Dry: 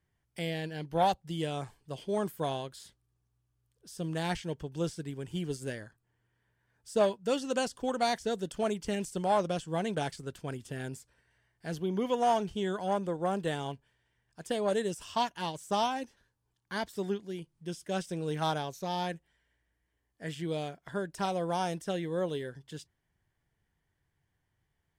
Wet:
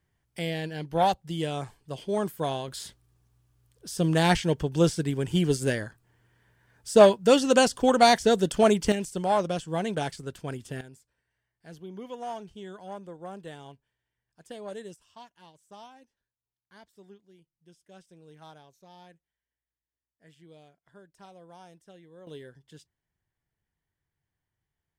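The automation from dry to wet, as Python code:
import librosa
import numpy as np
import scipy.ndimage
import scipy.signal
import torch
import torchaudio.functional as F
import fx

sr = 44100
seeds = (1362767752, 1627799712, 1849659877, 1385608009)

y = fx.gain(x, sr, db=fx.steps((0.0, 3.5), (2.68, 11.0), (8.92, 3.0), (10.81, -9.5), (14.96, -18.5), (22.27, -7.0)))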